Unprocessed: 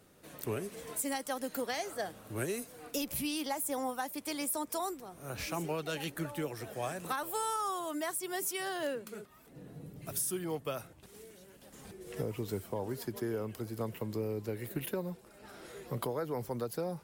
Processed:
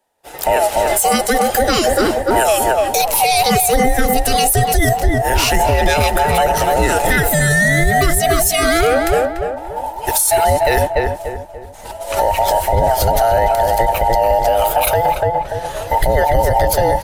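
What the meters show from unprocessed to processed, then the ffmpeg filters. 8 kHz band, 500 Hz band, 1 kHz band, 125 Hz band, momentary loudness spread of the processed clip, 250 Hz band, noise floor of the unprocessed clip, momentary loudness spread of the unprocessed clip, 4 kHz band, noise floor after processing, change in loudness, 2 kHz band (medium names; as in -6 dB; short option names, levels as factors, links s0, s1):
+21.0 dB, +23.0 dB, +26.0 dB, +22.0 dB, 8 LU, +16.0 dB, -58 dBFS, 15 LU, +22.0 dB, -31 dBFS, +22.5 dB, +25.5 dB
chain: -filter_complex "[0:a]afftfilt=real='real(if(between(b,1,1008),(2*floor((b-1)/48)+1)*48-b,b),0)':imag='imag(if(between(b,1,1008),(2*floor((b-1)/48)+1)*48-b,b),0)*if(between(b,1,1008),-1,1)':win_size=2048:overlap=0.75,agate=range=0.0224:threshold=0.00708:ratio=3:detection=peak,asubboost=boost=7.5:cutoff=82,asplit=2[s0][s1];[s1]adelay=291,lowpass=f=1400:p=1,volume=0.631,asplit=2[s2][s3];[s3]adelay=291,lowpass=f=1400:p=1,volume=0.43,asplit=2[s4][s5];[s5]adelay=291,lowpass=f=1400:p=1,volume=0.43,asplit=2[s6][s7];[s7]adelay=291,lowpass=f=1400:p=1,volume=0.43,asplit=2[s8][s9];[s9]adelay=291,lowpass=f=1400:p=1,volume=0.43[s10];[s2][s4][s6][s8][s10]amix=inputs=5:normalize=0[s11];[s0][s11]amix=inputs=2:normalize=0,aresample=32000,aresample=44100,alimiter=level_in=33.5:limit=0.891:release=50:level=0:latency=1,volume=0.631"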